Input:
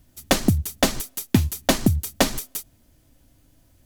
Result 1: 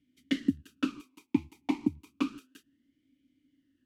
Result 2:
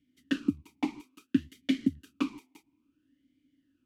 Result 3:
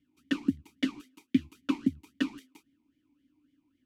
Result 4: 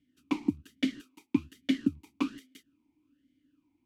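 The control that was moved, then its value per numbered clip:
formant filter swept between two vowels, speed: 0.31, 0.59, 3.7, 1.2 Hertz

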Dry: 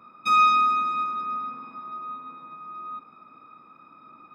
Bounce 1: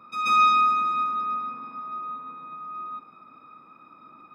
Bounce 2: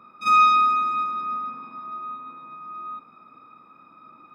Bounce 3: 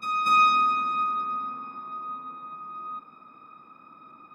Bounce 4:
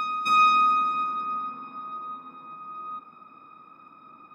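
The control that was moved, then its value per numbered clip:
backwards echo, delay time: 134, 44, 236, 461 milliseconds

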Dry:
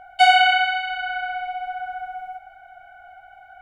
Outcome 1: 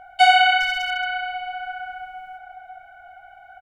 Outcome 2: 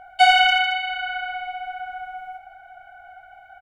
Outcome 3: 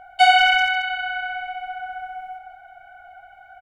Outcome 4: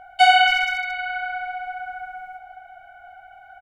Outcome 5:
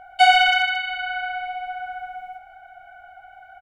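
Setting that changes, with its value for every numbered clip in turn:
far-end echo of a speakerphone, delay time: 400, 80, 180, 270, 120 milliseconds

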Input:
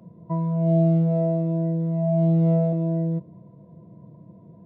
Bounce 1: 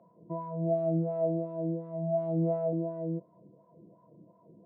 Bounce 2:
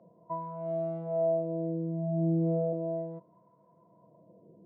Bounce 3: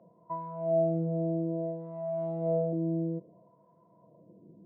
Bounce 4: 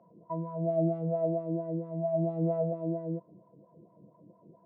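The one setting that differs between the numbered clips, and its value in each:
LFO wah, speed: 2.8, 0.35, 0.6, 4.4 Hertz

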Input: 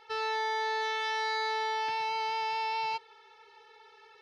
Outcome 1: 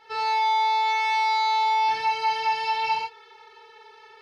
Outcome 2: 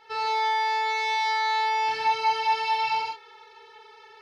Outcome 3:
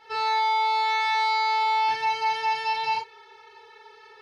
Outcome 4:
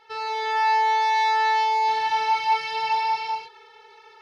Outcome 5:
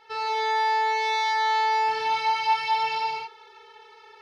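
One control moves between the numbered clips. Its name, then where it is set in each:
reverb whose tail is shaped and stops, gate: 130, 200, 80, 530, 320 milliseconds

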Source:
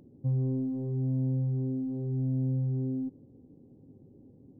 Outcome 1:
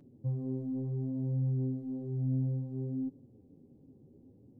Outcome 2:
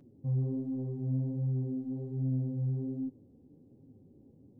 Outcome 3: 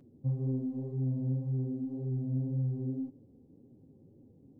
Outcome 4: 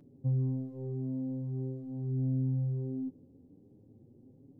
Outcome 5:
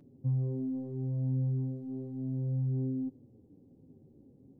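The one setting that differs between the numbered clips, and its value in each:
flanger, speed: 0.64, 1.3, 1.9, 0.22, 0.34 Hertz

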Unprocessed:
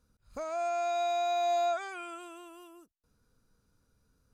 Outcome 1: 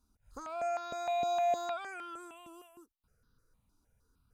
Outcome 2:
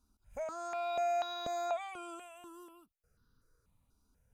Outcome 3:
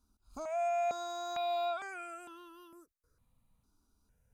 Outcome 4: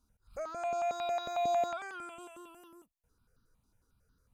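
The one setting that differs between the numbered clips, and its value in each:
step-sequenced phaser, speed: 6.5, 4.1, 2.2, 11 Hertz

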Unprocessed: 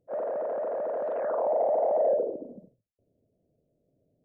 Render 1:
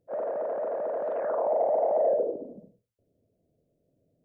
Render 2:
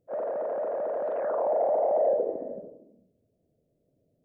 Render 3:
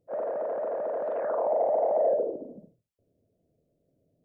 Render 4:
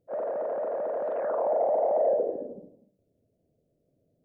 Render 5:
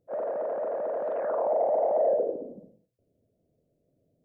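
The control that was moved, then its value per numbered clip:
reverb whose tail is shaped and stops, gate: 140, 500, 90, 330, 220 milliseconds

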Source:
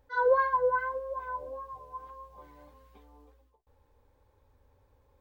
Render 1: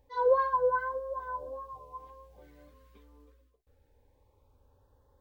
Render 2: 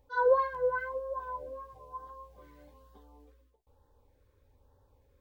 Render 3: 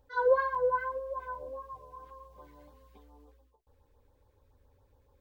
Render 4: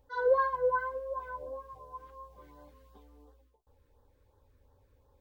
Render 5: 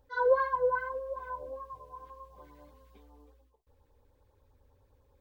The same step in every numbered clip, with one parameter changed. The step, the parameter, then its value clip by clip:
auto-filter notch, speed: 0.24, 1.1, 7.1, 2.8, 10 Hertz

